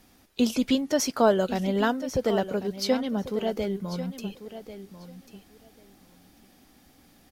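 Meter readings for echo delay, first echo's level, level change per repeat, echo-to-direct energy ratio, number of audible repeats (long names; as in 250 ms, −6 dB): 1,093 ms, −13.0 dB, −16.0 dB, −13.0 dB, 2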